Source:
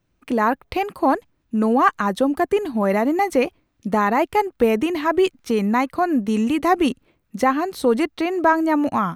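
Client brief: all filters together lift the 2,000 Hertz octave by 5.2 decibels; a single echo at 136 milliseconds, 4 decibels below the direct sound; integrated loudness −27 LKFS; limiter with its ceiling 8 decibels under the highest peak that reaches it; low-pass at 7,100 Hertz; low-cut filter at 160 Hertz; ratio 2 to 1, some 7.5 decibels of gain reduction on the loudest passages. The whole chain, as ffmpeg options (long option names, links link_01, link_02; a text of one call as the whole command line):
ffmpeg -i in.wav -af "highpass=160,lowpass=7100,equalizer=frequency=2000:width_type=o:gain=6.5,acompressor=threshold=-23dB:ratio=2,alimiter=limit=-16dB:level=0:latency=1,aecho=1:1:136:0.631,volume=-2dB" out.wav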